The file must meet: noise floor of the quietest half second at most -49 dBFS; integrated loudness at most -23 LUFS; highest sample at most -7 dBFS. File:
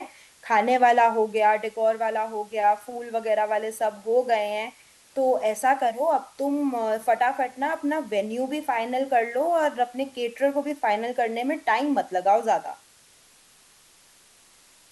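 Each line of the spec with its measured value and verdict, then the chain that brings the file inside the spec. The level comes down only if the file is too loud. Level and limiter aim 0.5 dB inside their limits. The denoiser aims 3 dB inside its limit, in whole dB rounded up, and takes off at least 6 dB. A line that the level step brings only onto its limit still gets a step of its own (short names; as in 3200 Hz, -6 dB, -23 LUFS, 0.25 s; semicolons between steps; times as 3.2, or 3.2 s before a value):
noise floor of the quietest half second -56 dBFS: OK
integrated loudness -24.5 LUFS: OK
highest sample -8.0 dBFS: OK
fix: none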